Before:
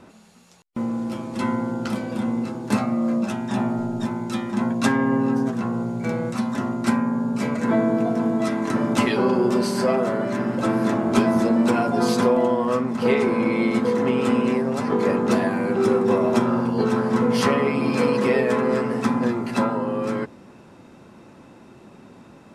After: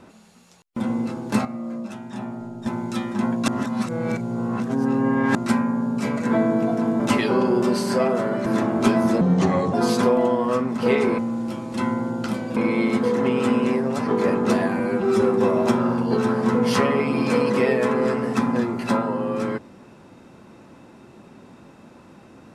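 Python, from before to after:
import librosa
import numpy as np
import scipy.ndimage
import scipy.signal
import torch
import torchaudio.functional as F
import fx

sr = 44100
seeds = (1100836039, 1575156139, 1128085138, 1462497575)

y = fx.edit(x, sr, fx.move(start_s=0.8, length_s=1.38, to_s=13.38),
    fx.clip_gain(start_s=2.83, length_s=1.21, db=-8.5),
    fx.reverse_span(start_s=4.86, length_s=1.87),
    fx.cut(start_s=8.38, length_s=0.5),
    fx.cut(start_s=10.34, length_s=0.43),
    fx.speed_span(start_s=11.52, length_s=0.41, speed=0.78),
    fx.stretch_span(start_s=15.61, length_s=0.28, factor=1.5), tone=tone)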